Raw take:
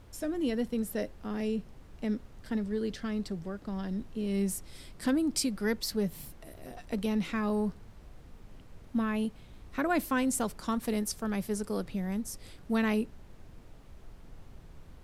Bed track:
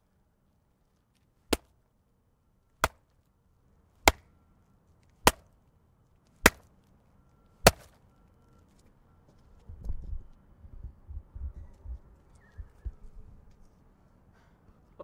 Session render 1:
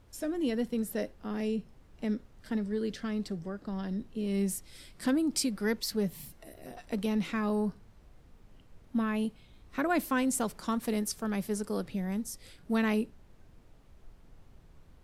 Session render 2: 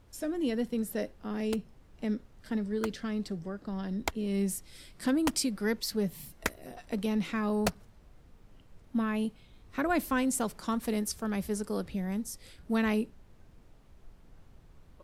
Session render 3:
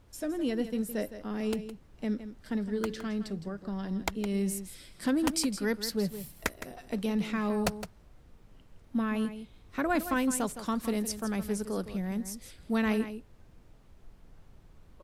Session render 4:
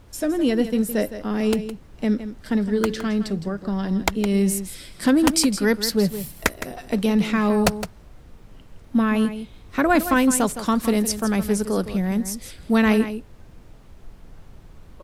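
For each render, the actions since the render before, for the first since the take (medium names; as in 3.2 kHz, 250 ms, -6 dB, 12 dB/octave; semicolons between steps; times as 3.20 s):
noise print and reduce 6 dB
add bed track -12.5 dB
delay 163 ms -11.5 dB
trim +10.5 dB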